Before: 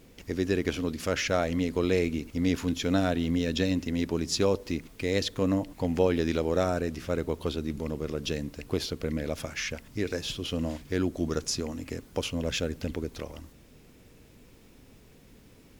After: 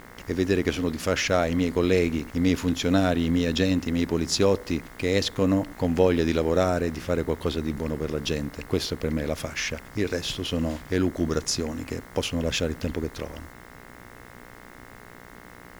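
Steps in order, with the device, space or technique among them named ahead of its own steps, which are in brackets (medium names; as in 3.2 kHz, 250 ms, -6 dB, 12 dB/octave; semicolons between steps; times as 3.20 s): video cassette with head-switching buzz (mains buzz 60 Hz, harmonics 36, -52 dBFS 0 dB/octave; white noise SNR 35 dB); trim +4 dB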